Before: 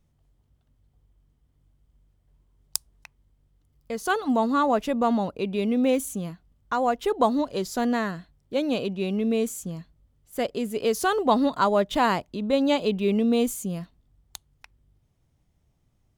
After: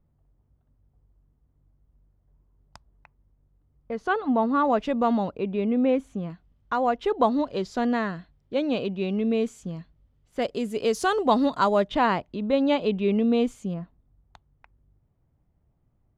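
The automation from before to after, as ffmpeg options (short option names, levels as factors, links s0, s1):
-af "asetnsamples=n=441:p=0,asendcmd='3.92 lowpass f 2300;4.65 lowpass f 4200;5.37 lowpass f 2100;6.3 lowpass f 3900;10.42 lowpass f 8100;11.88 lowpass f 3300;13.74 lowpass f 1400',lowpass=1300"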